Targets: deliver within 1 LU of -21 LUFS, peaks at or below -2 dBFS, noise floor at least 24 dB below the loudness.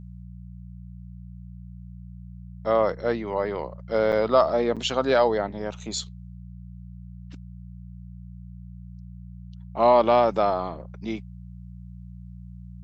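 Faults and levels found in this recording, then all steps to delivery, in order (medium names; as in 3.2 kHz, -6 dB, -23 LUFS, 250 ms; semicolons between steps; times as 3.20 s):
dropouts 2; longest dropout 6.7 ms; hum 60 Hz; highest harmonic 180 Hz; hum level -38 dBFS; loudness -23.5 LUFS; peak level -7.0 dBFS; loudness target -21.0 LUFS
-> interpolate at 4.12/4.76 s, 6.7 ms; de-hum 60 Hz, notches 3; trim +2.5 dB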